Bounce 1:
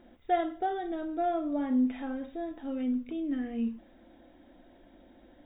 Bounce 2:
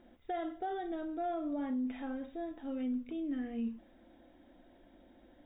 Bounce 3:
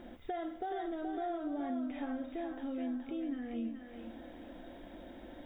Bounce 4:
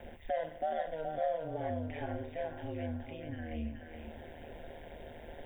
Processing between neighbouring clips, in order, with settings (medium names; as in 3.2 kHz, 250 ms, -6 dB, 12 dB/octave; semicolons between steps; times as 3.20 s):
peak limiter -25.5 dBFS, peak gain reduction 9.5 dB; trim -4 dB
compression 2.5:1, threshold -53 dBFS, peak gain reduction 13.5 dB; on a send: thinning echo 424 ms, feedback 47%, high-pass 450 Hz, level -4.5 dB; on the sum: trim +10.5 dB
static phaser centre 1.3 kHz, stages 6; ring modulator 77 Hz; frequency shift -81 Hz; trim +9 dB